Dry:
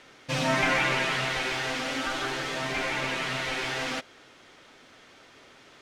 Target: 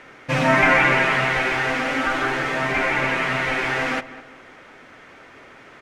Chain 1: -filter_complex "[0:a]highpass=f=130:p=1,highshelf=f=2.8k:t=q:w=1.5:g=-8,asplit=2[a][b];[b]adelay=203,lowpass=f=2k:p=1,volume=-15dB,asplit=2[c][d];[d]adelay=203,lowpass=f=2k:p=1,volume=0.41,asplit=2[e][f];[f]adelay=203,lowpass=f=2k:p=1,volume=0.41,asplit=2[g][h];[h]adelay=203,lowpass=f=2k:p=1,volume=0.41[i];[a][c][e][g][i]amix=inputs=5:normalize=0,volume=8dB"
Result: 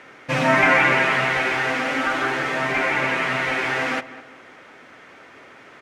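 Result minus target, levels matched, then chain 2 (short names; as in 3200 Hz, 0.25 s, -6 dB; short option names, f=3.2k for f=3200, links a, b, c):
125 Hz band -2.5 dB
-filter_complex "[0:a]highshelf=f=2.8k:t=q:w=1.5:g=-8,asplit=2[a][b];[b]adelay=203,lowpass=f=2k:p=1,volume=-15dB,asplit=2[c][d];[d]adelay=203,lowpass=f=2k:p=1,volume=0.41,asplit=2[e][f];[f]adelay=203,lowpass=f=2k:p=1,volume=0.41,asplit=2[g][h];[h]adelay=203,lowpass=f=2k:p=1,volume=0.41[i];[a][c][e][g][i]amix=inputs=5:normalize=0,volume=8dB"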